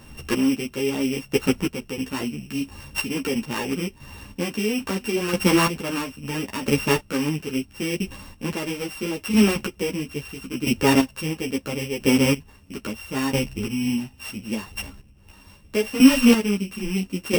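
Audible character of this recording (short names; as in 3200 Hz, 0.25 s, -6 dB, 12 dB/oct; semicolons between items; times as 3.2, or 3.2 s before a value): a buzz of ramps at a fixed pitch in blocks of 16 samples; chopped level 0.75 Hz, depth 65%, duty 25%; a shimmering, thickened sound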